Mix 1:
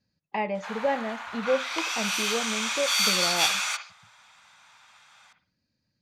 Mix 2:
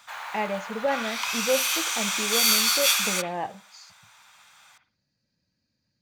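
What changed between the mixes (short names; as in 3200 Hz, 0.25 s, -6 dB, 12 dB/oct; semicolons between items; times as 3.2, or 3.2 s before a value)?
background: entry -0.55 s; master: remove air absorption 55 m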